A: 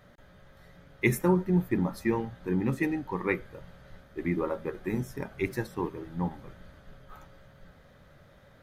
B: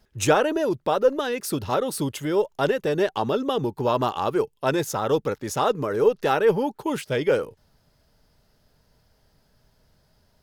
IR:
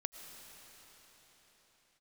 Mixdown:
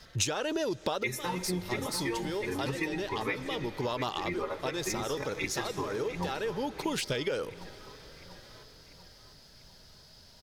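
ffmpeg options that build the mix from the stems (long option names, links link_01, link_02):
-filter_complex "[0:a]equalizer=frequency=200:width=1.1:gain=-8,asplit=2[link_01][link_02];[link_02]adelay=4.1,afreqshift=1.5[link_03];[link_01][link_03]amix=inputs=2:normalize=1,volume=0.5dB,asplit=4[link_04][link_05][link_06][link_07];[link_05]volume=-6.5dB[link_08];[link_06]volume=-8dB[link_09];[1:a]acompressor=threshold=-22dB:ratio=6,volume=3dB,asplit=2[link_10][link_11];[link_11]volume=-20.5dB[link_12];[link_07]apad=whole_len=459560[link_13];[link_10][link_13]sidechaincompress=threshold=-46dB:ratio=8:attack=16:release=715[link_14];[2:a]atrim=start_sample=2205[link_15];[link_08][link_12]amix=inputs=2:normalize=0[link_16];[link_16][link_15]afir=irnorm=-1:irlink=0[link_17];[link_09]aecho=0:1:694|1388|2082|2776|3470|4164|4858|5552:1|0.52|0.27|0.141|0.0731|0.038|0.0198|0.0103[link_18];[link_04][link_14][link_17][link_18]amix=inputs=4:normalize=0,equalizer=frequency=4700:width=0.75:gain=12.5,acompressor=threshold=-29dB:ratio=5"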